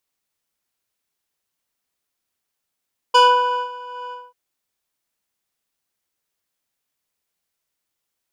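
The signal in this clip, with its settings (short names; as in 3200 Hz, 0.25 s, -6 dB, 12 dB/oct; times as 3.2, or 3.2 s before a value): synth patch with tremolo B5, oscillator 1 square, interval +7 st, detune 18 cents, sub -7 dB, noise -29.5 dB, filter lowpass, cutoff 1000 Hz, Q 0.82, filter envelope 2.5 oct, filter decay 0.18 s, filter sustain 40%, attack 11 ms, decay 0.53 s, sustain -21 dB, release 0.20 s, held 0.99 s, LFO 2.5 Hz, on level 3 dB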